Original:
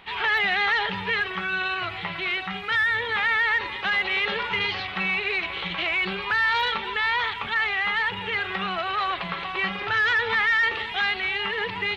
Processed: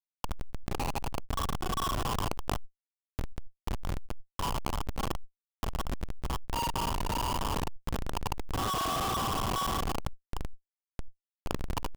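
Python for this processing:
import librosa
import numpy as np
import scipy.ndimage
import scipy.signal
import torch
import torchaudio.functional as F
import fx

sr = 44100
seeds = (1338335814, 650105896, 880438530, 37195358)

y = fx.envelope_sharpen(x, sr, power=2.0)
y = scipy.signal.sosfilt(scipy.signal.butter(2, 540.0, 'highpass', fs=sr, output='sos'), y)
y = fx.rider(y, sr, range_db=5, speed_s=0.5)
y = fx.formant_cascade(y, sr, vowel='a')
y = fx.notch_comb(y, sr, f0_hz=720.0)
y = fx.rev_spring(y, sr, rt60_s=1.8, pass_ms=(36, 55), chirp_ms=45, drr_db=-5.0)
y = fx.schmitt(y, sr, flips_db=-34.5)
y = fx.env_flatten(y, sr, amount_pct=100)
y = y * 10.0 ** (6.5 / 20.0)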